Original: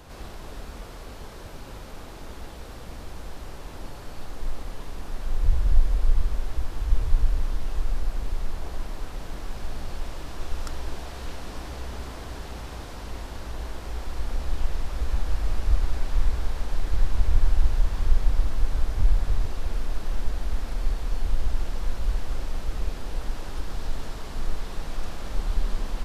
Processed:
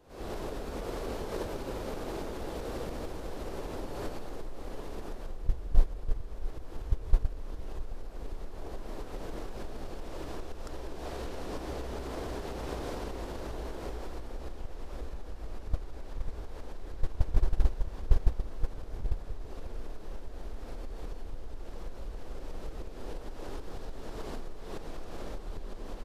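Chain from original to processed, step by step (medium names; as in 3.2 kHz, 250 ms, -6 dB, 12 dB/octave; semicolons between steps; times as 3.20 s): recorder AGC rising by 68 dB/s; peaking EQ 420 Hz +10.5 dB 1.7 oct; gate -12 dBFS, range -17 dB; delay 669 ms -16.5 dB; trim -2.5 dB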